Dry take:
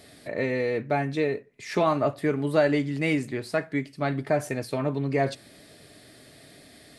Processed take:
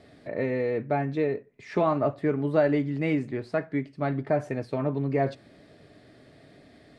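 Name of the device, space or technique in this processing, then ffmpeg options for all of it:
through cloth: -af "lowpass=7100,highshelf=frequency=2600:gain=-14"

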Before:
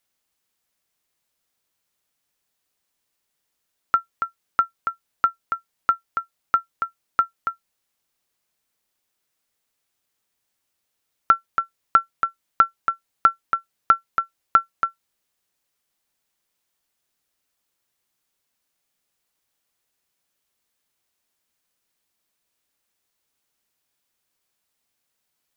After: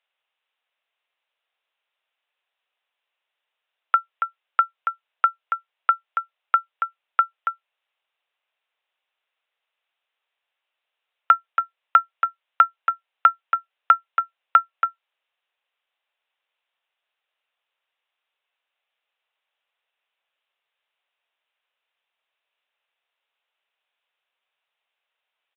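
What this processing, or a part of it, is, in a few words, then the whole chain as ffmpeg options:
musical greeting card: -af "aresample=8000,aresample=44100,highpass=frequency=530:width=0.5412,highpass=frequency=530:width=1.3066,equalizer=frequency=2700:width_type=o:width=0.37:gain=4.5,volume=1dB"

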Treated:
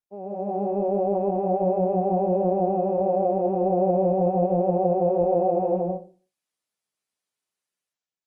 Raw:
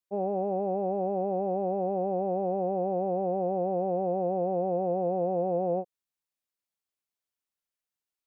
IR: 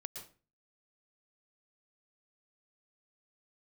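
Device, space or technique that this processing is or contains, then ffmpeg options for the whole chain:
far-field microphone of a smart speaker: -filter_complex "[0:a]asettb=1/sr,asplit=3[link_01][link_02][link_03];[link_01]atrim=end=0.614[link_04];[link_02]atrim=start=0.61:end=1.14,asetpts=PTS-STARTPTS,afade=type=in:duration=0.004:curve=qsin,afade=type=out:start_time=0.526:duration=0.004:curve=qsin,equalizer=frequency=690:width_type=o:width=2.7:gain=-2[link_05];[link_03]atrim=start=1.136[link_06];[link_04][link_05]acrossfade=duration=0.004:curve1=hsin:curve2=qsin[link_07];[link_07][link_06]acrossfade=duration=0.004:curve1=qsin:curve2=hsin[link_08];[1:a]atrim=start_sample=2205[link_09];[link_08][link_09]afir=irnorm=-1:irlink=0,highpass=frequency=110:width=0.5412,highpass=frequency=110:width=1.3066,dynaudnorm=framelen=110:gausssize=9:maxgain=11.5dB,volume=-2.5dB" -ar 48000 -c:a libopus -b:a 24k

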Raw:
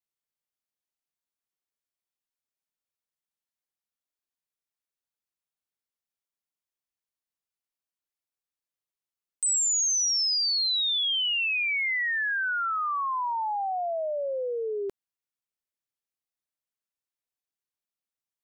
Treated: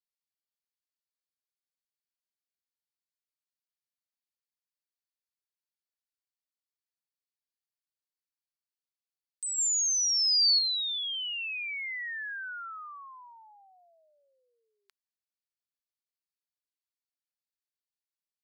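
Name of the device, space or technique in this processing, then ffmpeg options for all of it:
headphones lying on a table: -filter_complex "[0:a]highpass=frequency=1400:width=0.5412,highpass=frequency=1400:width=1.3066,equalizer=frequency=4500:width_type=o:width=0.43:gain=8.5,asettb=1/sr,asplit=3[link_01][link_02][link_03];[link_01]atrim=end=9.584[link_04];[link_02]atrim=start=9.58:end=10.59,asetpts=PTS-STARTPTS,afade=type=in:duration=0.004:curve=qsin,afade=type=out:start_time=1.006:duration=0.004:curve=qsin,highshelf=frequency=5000:gain=8.5[link_05];[link_03]atrim=start=10.586[link_06];[link_04][link_05]acrossfade=duration=0.004:curve1=hsin:curve2=qsin[link_07];[link_07][link_06]acrossfade=duration=0.004:curve1=qsin:curve2=hsin,volume=-9dB"

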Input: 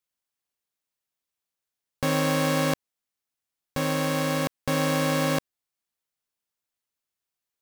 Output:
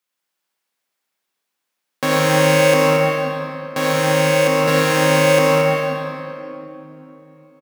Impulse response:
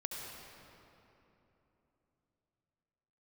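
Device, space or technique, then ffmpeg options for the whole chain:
stadium PA: -filter_complex "[0:a]highpass=frequency=160:width=0.5412,highpass=frequency=160:width=1.3066,equalizer=frequency=1600:width_type=o:width=2.7:gain=4.5,aecho=1:1:195.3|227.4:0.282|0.447[link_01];[1:a]atrim=start_sample=2205[link_02];[link_01][link_02]afir=irnorm=-1:irlink=0,volume=7.5dB"

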